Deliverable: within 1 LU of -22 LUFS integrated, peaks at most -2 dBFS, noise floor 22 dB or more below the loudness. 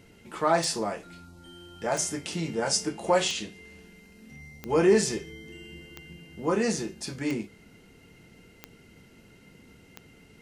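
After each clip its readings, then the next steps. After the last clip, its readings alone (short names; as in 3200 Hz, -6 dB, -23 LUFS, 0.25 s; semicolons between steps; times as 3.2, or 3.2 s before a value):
clicks 8; loudness -27.5 LUFS; peak -10.0 dBFS; loudness target -22.0 LUFS
-> de-click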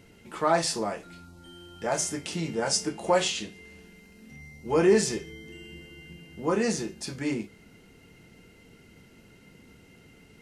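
clicks 0; loudness -27.5 LUFS; peak -10.0 dBFS; loudness target -22.0 LUFS
-> gain +5.5 dB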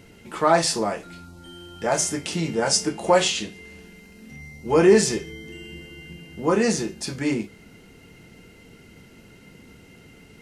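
loudness -22.0 LUFS; peak -4.5 dBFS; noise floor -50 dBFS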